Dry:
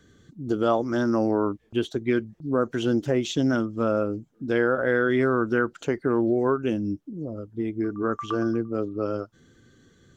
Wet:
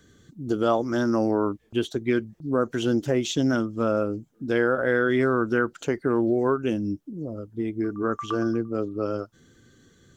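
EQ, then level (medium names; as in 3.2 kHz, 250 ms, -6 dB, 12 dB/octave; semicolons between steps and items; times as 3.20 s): treble shelf 6.3 kHz +7 dB; 0.0 dB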